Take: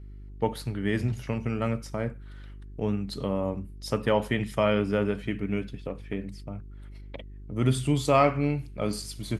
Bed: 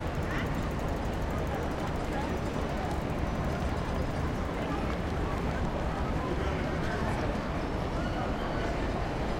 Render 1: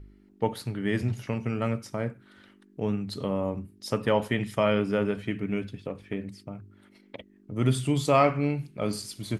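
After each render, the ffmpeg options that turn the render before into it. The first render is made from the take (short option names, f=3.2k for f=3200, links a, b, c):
-af "bandreject=f=50:t=h:w=4,bandreject=f=100:t=h:w=4,bandreject=f=150:t=h:w=4"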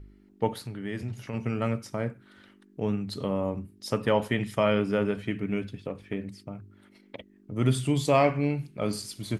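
-filter_complex "[0:a]asplit=3[a][b][c];[a]afade=t=out:st=0.58:d=0.02[d];[b]acompressor=threshold=-41dB:ratio=1.5:attack=3.2:release=140:knee=1:detection=peak,afade=t=in:st=0.58:d=0.02,afade=t=out:st=1.33:d=0.02[e];[c]afade=t=in:st=1.33:d=0.02[f];[d][e][f]amix=inputs=3:normalize=0,asettb=1/sr,asplit=3[g][h][i];[g]atrim=end=7.964[j];[h]atrim=start=7.96:end=8.51,asetpts=PTS-STARTPTS,afade=t=in:d=0.004:c=qsin,afade=t=out:st=0.546:d=0.004:c=qsin,bandreject=f=1.3k:w=5.8[k];[i]atrim=start=8.506[l];[j][k]acrossfade=d=0.004:c1=hsin:c2=qsin[m];[m][l]acrossfade=d=0.004:c1=qsin:c2=hsin"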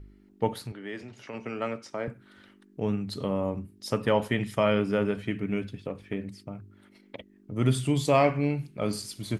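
-filter_complex "[0:a]asettb=1/sr,asplit=3[a][b][c];[a]atrim=end=0.724[d];[b]atrim=start=0.72:end=2.08,asetpts=PTS-STARTPTS,afade=t=in:d=0.004:c=qsin,afade=t=out:st=1.356:d=0.004:c=qsin,acrossover=split=260 7700:gain=0.141 1 0.0891[e][f][g];[e][f][g]amix=inputs=3:normalize=0[h];[c]atrim=start=2.076[i];[d][h]acrossfade=d=0.004:c1=hsin:c2=qsin[j];[j][i]acrossfade=d=0.004:c1=qsin:c2=hsin"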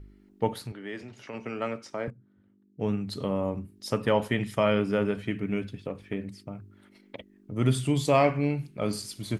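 -filter_complex "[0:a]asettb=1/sr,asplit=3[a][b][c];[a]atrim=end=2.104[d];[b]atrim=start=2.1:end=2.8,asetpts=PTS-STARTPTS,afade=t=in:d=0.004:c=qsin,afade=t=out:st=0.696:d=0.004:c=qsin,bandpass=f=120:t=q:w=1.2[e];[c]atrim=start=2.796[f];[d][e]acrossfade=d=0.004:c1=hsin:c2=qsin[g];[g][f]acrossfade=d=0.004:c1=qsin:c2=hsin"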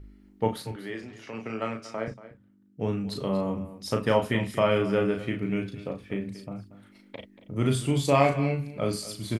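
-filter_complex "[0:a]asplit=2[a][b];[b]adelay=36,volume=-5dB[c];[a][c]amix=inputs=2:normalize=0,aecho=1:1:234:0.168"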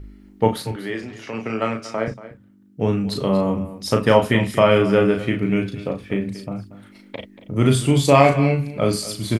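-af "volume=8.5dB,alimiter=limit=-1dB:level=0:latency=1"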